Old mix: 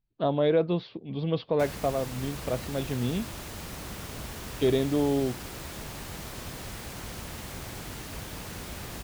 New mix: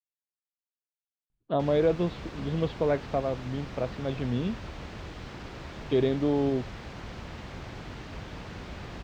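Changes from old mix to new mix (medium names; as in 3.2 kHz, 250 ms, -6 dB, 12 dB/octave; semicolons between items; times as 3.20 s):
speech: entry +1.30 s; master: add distance through air 180 m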